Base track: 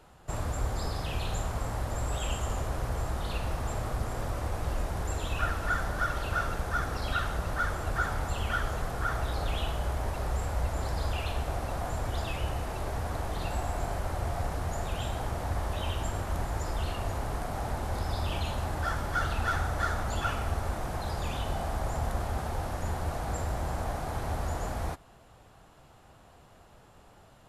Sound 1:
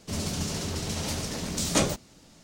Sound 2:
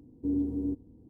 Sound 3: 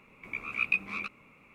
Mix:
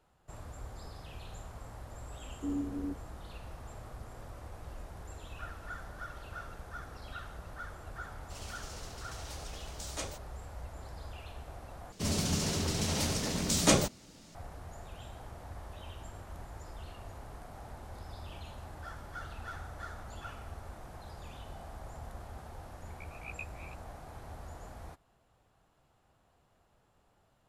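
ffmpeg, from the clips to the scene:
-filter_complex "[1:a]asplit=2[a][b];[0:a]volume=-14dB[c];[a]equalizer=f=190:t=o:w=1.2:g=-15[d];[c]asplit=2[e][f];[e]atrim=end=11.924[g];[b]atrim=end=2.43,asetpts=PTS-STARTPTS,volume=-0.5dB[h];[f]atrim=start=14.346[i];[2:a]atrim=end=1.09,asetpts=PTS-STARTPTS,volume=-6dB,afade=t=in:d=0.004:c=hsin,afade=t=out:st=1.086:d=0.004:c=hsin,adelay=2190[j];[d]atrim=end=2.43,asetpts=PTS-STARTPTS,volume=-14dB,afade=t=in:d=0.004:c=hsin,afade=t=out:st=2.426:d=0.004:c=hsin,adelay=8220[k];[3:a]atrim=end=1.54,asetpts=PTS-STARTPTS,volume=-16.5dB,afade=t=in:d=0.004:c=hsin,afade=t=out:st=1.536:d=0.004:c=hsin,adelay=22670[l];[g][h]acrossfade=d=0.004:c1=hsin:c2=hsin[m];[m][i]acrossfade=d=0.004:c1=hsin:c2=hsin[n];[n][j][k][l]amix=inputs=4:normalize=0"

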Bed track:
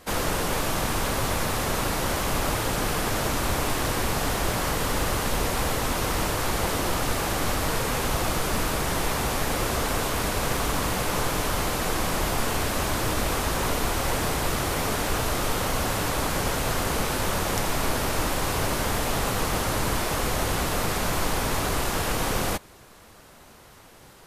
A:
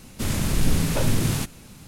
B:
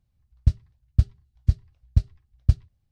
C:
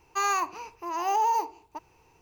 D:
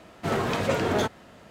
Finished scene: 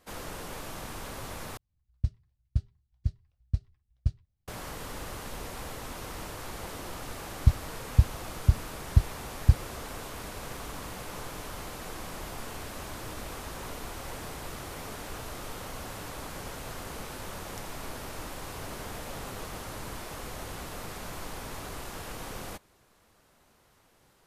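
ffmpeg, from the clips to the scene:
-filter_complex "[2:a]asplit=2[a][b];[0:a]volume=-14dB[c];[4:a]acompressor=threshold=-28dB:ratio=6:attack=3.2:release=140:knee=1:detection=peak[d];[c]asplit=2[e][f];[e]atrim=end=1.574[g];[a]atrim=end=2.91,asetpts=PTS-STARTPTS,volume=-9.5dB[h];[f]atrim=start=4.476[i];[b]atrim=end=2.91,asetpts=PTS-STARTPTS,volume=-1.5dB,afade=t=in:d=0.004:c=hsin,afade=t=out:st=2.906:d=0.004:c=hsin,adelay=7000[j];[d]atrim=end=1.5,asetpts=PTS-STARTPTS,volume=-17.5dB,afade=t=in:d=0.004:c=hsin,afade=t=out:st=1.496:d=0.004:c=hsin,adelay=18420[k];[g][h]acrossfade=d=0.004:c1=hsin:c2=hsin[l];[l][i]acrossfade=d=0.004:c1=hsin:c2=hsin[m];[m][j][k]amix=inputs=3:normalize=0"

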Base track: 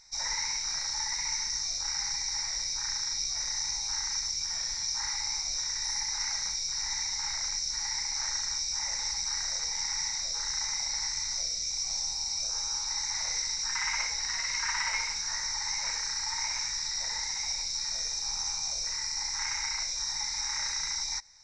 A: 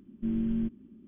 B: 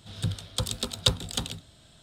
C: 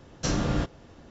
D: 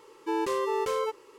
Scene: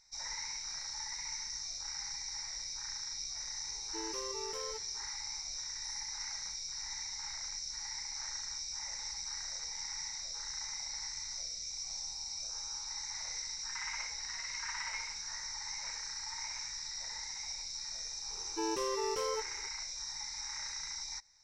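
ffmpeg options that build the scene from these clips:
-filter_complex "[4:a]asplit=2[a][b];[0:a]volume=-9dB[c];[a]atrim=end=1.38,asetpts=PTS-STARTPTS,volume=-15dB,afade=t=in:d=0.004:c=hsin,afade=t=out:st=1.376:d=0.004:c=hsin,adelay=3670[d];[b]atrim=end=1.38,asetpts=PTS-STARTPTS,volume=-7dB,afade=t=in:d=0.004:c=hsin,afade=t=out:st=1.376:d=0.004:c=hsin,adelay=18300[e];[c][d][e]amix=inputs=3:normalize=0"

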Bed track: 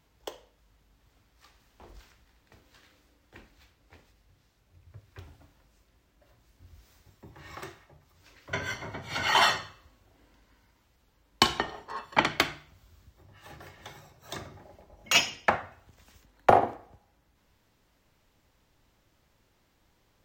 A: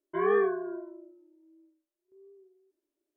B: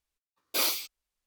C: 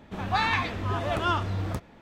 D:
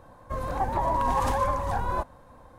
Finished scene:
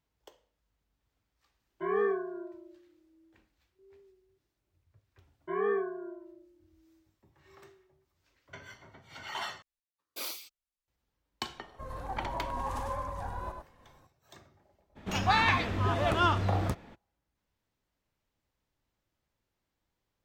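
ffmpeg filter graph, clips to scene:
-filter_complex "[1:a]asplit=2[a][b];[0:a]volume=-15.5dB[c];[4:a]aecho=1:1:100:0.531[d];[c]asplit=2[e][f];[e]atrim=end=9.624[g];[2:a]atrim=end=1.26,asetpts=PTS-STARTPTS,volume=-11.5dB[h];[f]atrim=start=10.876[i];[a]atrim=end=3.16,asetpts=PTS-STARTPTS,volume=-4dB,afade=t=in:d=0.004:c=hsin,afade=t=out:st=3.156:d=0.004:c=hsin,adelay=1670[j];[b]atrim=end=3.16,asetpts=PTS-STARTPTS,volume=-5dB,afade=t=in:d=0.004:c=hsin,afade=t=out:st=3.156:d=0.004:c=hsin,adelay=5340[k];[d]atrim=end=2.58,asetpts=PTS-STARTPTS,volume=-11.5dB,afade=t=in:d=0.004:c=hsin,afade=t=out:st=2.576:d=0.004:c=hsin,adelay=11490[l];[3:a]atrim=end=2.01,asetpts=PTS-STARTPTS,afade=t=in:d=0.02,afade=t=out:st=1.99:d=0.02,adelay=14950[m];[g][h]acrossfade=d=0.004:c1=hsin:c2=hsin[n];[n][i]acrossfade=d=0.004:c1=hsin:c2=hsin[o];[o][j][k][l][m]amix=inputs=5:normalize=0"

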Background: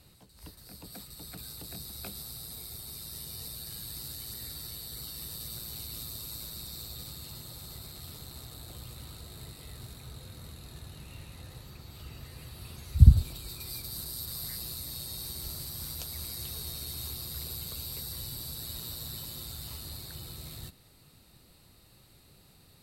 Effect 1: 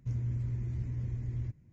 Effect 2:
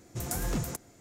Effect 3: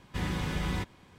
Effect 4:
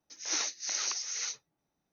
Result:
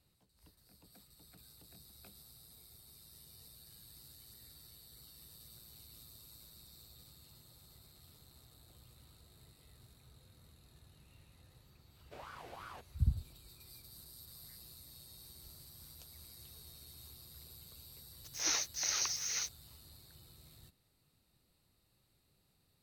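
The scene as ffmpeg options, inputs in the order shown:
-filter_complex "[0:a]volume=-16dB[a];[3:a]aeval=exprs='val(0)*sin(2*PI*920*n/s+920*0.45/2.9*sin(2*PI*2.9*n/s))':c=same[b];[4:a]aeval=exprs='val(0)*gte(abs(val(0)),0.00596)':c=same[c];[b]atrim=end=1.18,asetpts=PTS-STARTPTS,volume=-16.5dB,afade=t=in:d=0.004:c=hsin,afade=t=out:st=1.176:d=0.004:c=hsin,adelay=11970[d];[c]atrim=end=1.92,asetpts=PTS-STARTPTS,volume=-1.5dB,afade=t=in:d=0.004:c=hsin,afade=t=out:st=1.916:d=0.004:c=hsin,adelay=18140[e];[a][d][e]amix=inputs=3:normalize=0"

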